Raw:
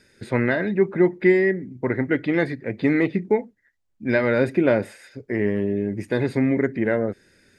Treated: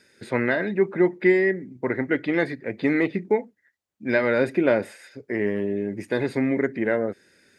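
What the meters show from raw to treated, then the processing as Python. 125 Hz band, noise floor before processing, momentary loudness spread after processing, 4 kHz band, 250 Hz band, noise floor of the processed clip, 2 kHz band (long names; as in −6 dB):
−6.0 dB, −69 dBFS, 8 LU, 0.0 dB, −2.5 dB, −71 dBFS, 0.0 dB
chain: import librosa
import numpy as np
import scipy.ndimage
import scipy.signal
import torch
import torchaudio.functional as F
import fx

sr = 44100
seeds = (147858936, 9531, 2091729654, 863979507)

y = fx.highpass(x, sr, hz=250.0, slope=6)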